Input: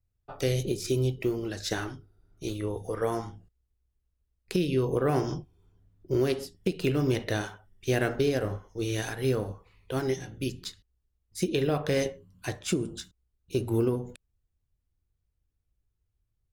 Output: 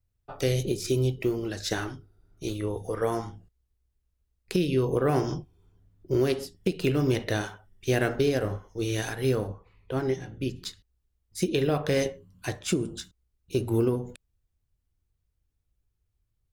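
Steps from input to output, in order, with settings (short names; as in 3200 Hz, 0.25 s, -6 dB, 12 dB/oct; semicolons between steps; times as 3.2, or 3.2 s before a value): 9.46–10.55 high shelf 2800 Hz -> 4400 Hz -11.5 dB; gain +1.5 dB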